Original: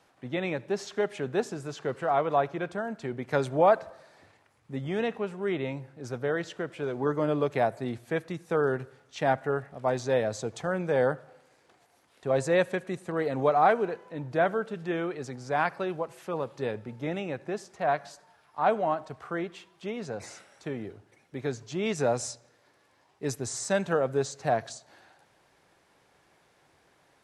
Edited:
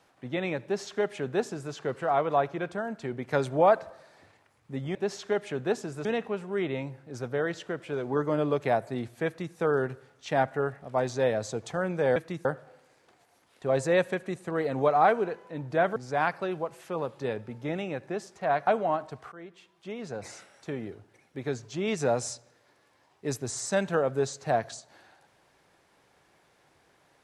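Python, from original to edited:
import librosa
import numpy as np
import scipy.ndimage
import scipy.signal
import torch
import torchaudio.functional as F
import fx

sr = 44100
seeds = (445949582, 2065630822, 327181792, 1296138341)

y = fx.edit(x, sr, fx.duplicate(start_s=0.63, length_s=1.1, to_s=4.95),
    fx.duplicate(start_s=8.16, length_s=0.29, to_s=11.06),
    fx.cut(start_s=14.57, length_s=0.77),
    fx.cut(start_s=18.05, length_s=0.6),
    fx.fade_in_from(start_s=19.3, length_s=0.94, floor_db=-17.0), tone=tone)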